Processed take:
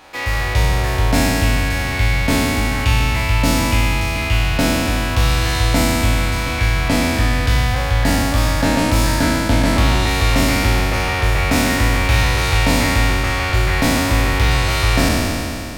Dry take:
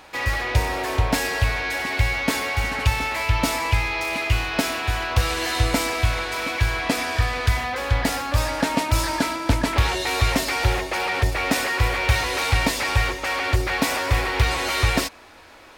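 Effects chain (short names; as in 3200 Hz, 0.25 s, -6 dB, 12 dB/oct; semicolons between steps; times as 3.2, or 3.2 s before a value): spectral trails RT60 2.80 s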